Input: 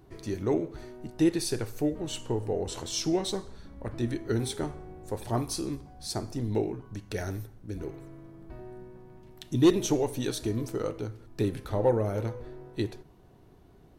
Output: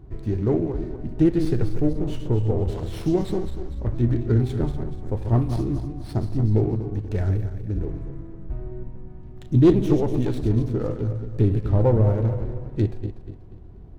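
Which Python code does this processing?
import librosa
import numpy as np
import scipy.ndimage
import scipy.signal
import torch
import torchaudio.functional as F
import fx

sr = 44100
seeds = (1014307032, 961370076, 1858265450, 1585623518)

y = fx.reverse_delay_fb(x, sr, ms=121, feedback_pct=60, wet_db=-8.5)
y = fx.riaa(y, sr, side='playback')
y = fx.running_max(y, sr, window=5)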